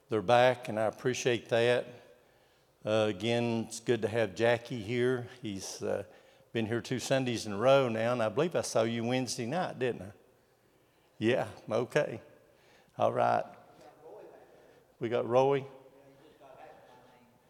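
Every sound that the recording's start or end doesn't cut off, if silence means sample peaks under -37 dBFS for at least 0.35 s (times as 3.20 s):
2.85–6.02 s
6.55–10.07 s
11.21–12.17 s
12.99–13.43 s
15.01–15.65 s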